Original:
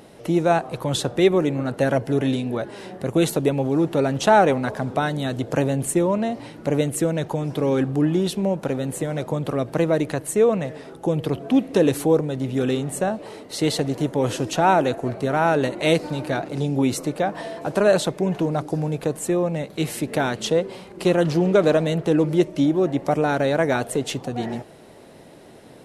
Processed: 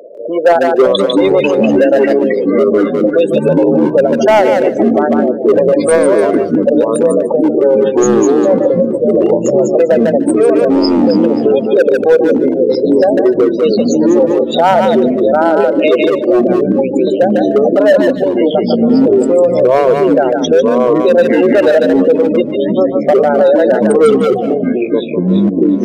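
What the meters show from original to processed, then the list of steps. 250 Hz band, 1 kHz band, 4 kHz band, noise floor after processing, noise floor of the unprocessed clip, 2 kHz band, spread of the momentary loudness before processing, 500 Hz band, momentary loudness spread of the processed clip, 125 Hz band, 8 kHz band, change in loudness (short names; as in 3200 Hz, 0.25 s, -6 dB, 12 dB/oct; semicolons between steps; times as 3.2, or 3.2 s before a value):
+11.5 dB, +8.0 dB, +6.0 dB, -18 dBFS, -45 dBFS, +7.5 dB, 8 LU, +13.5 dB, 3 LU, +1.0 dB, +3.0 dB, +11.5 dB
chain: Wiener smoothing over 41 samples; tilt +3.5 dB/oct; in parallel at +2 dB: compressor 6:1, threshold -32 dBFS, peak gain reduction 18.5 dB; on the sum: loudest bins only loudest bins 16; resonant high-pass 530 Hz, resonance Q 4.9; hard clip -7 dBFS, distortion -15 dB; thinning echo 0.149 s, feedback 15%, high-pass 800 Hz, level -4 dB; echoes that change speed 0.174 s, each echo -5 st, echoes 3; maximiser +9.5 dB; gain -1 dB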